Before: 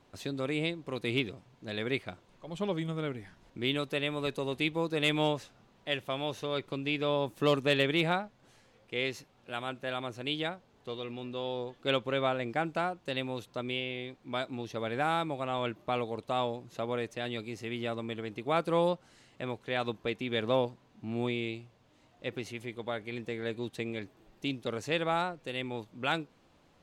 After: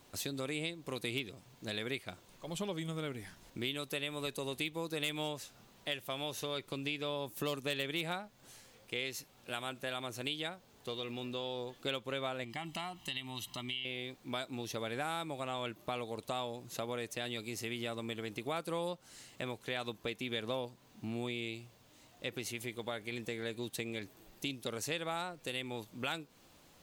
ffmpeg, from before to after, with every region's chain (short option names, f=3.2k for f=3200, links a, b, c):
-filter_complex "[0:a]asettb=1/sr,asplit=3[a][b][c];[a]atrim=end=12.444[d];[b]atrim=start=12.44:end=13.85,asetpts=PTS-STARTPTS,afade=t=in:d=0.004:c=qsin,afade=t=out:st=1.406:d=0.004:c=qsin,equalizer=f=3k:t=o:w=0.67:g=11,aecho=1:1:1:0.84,atrim=end_sample=62181,acompressor=threshold=-45dB:ratio=2:attack=3.2:release=140:knee=1:detection=peak[e];[c]atrim=start=13.846[f];[d][e]acrossfade=d=0.004:c1=hsin:c2=qsin[g];[g][f]acrossfade=d=0.004:c1=qsin:c2=hsin,aemphasis=mode=production:type=75fm,acompressor=threshold=-38dB:ratio=3,volume=1dB"